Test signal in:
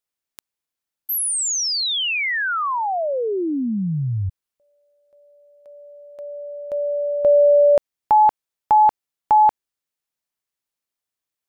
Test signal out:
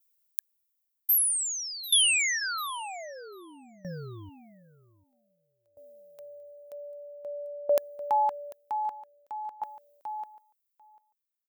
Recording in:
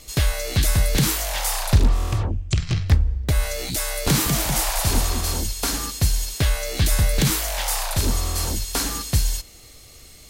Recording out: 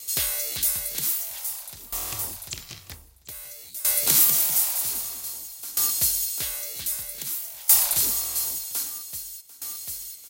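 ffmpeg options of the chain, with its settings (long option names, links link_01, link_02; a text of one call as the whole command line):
ffmpeg -i in.wav -filter_complex "[0:a]aemphasis=mode=production:type=riaa,bandreject=frequency=1700:width=25,asplit=2[link_01][link_02];[link_02]aecho=0:1:744|1488|2232:0.251|0.0502|0.01[link_03];[link_01][link_03]amix=inputs=2:normalize=0,aeval=exprs='val(0)*pow(10,-20*if(lt(mod(0.52*n/s,1),2*abs(0.52)/1000),1-mod(0.52*n/s,1)/(2*abs(0.52)/1000),(mod(0.52*n/s,1)-2*abs(0.52)/1000)/(1-2*abs(0.52)/1000))/20)':channel_layout=same,volume=-5.5dB" out.wav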